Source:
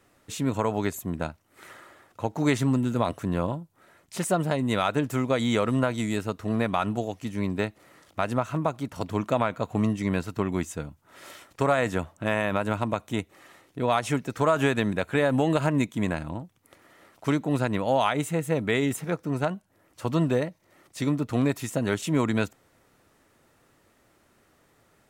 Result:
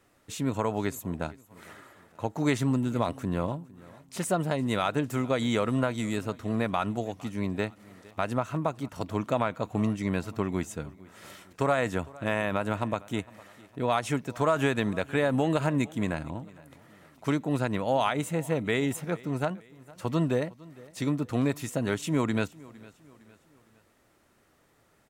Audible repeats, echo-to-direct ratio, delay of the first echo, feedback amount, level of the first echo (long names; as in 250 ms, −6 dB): 2, −21.0 dB, 458 ms, 44%, −22.0 dB